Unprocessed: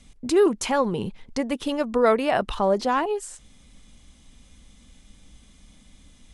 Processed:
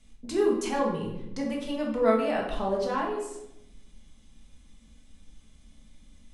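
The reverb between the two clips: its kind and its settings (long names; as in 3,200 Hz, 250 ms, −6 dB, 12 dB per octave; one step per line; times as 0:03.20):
rectangular room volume 260 cubic metres, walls mixed, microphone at 1.5 metres
level −11 dB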